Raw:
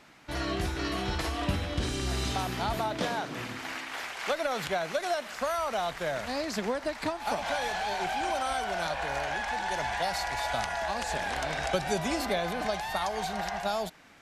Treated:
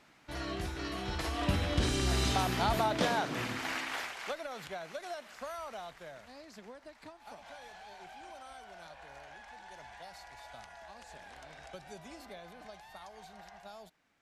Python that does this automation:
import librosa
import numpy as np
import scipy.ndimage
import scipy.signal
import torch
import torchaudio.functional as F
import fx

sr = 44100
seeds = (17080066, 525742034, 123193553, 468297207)

y = fx.gain(x, sr, db=fx.line((1.01, -6.5), (1.68, 1.0), (3.91, 1.0), (4.44, -11.5), (5.64, -11.5), (6.33, -19.0)))